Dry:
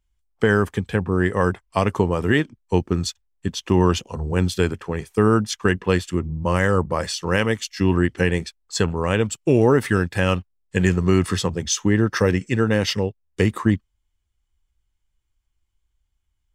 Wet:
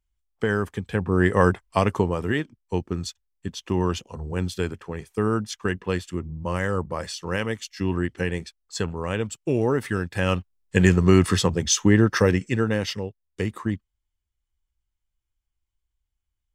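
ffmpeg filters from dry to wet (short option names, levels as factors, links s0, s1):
-af "volume=3.16,afade=t=in:st=0.83:d=0.55:silence=0.398107,afade=t=out:st=1.38:d=0.97:silence=0.375837,afade=t=in:st=10.03:d=0.75:silence=0.398107,afade=t=out:st=11.94:d=1.06:silence=0.334965"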